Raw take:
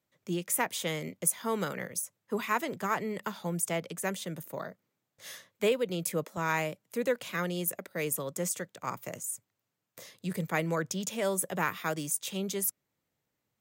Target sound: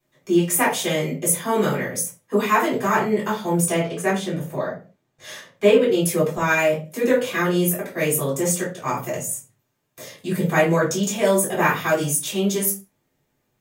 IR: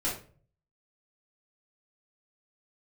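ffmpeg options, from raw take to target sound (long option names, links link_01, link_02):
-filter_complex "[0:a]asettb=1/sr,asplit=3[link_01][link_02][link_03];[link_01]atrim=end=3.774[link_04];[link_02]atrim=start=3.77:end=5.9,asetpts=PTS-STARTPTS,afade=type=in:duration=0.004:curve=qsin,afade=type=out:start_time=2.126:duration=0.004:curve=qsin,highshelf=frequency=8400:gain=-11[link_05];[link_03]atrim=start=5.896[link_06];[link_04][link_05]acrossfade=duration=0.004:curve1=hsin:curve2=qsin[link_07];[link_07][link_06]acrossfade=duration=0.004:curve1=qsin:curve2=hsin[link_08];[1:a]atrim=start_sample=2205,afade=type=out:start_time=0.33:duration=0.01,atrim=end_sample=14994,asetrate=52920,aresample=44100[link_09];[link_08][link_09]afir=irnorm=-1:irlink=0,volume=6dB"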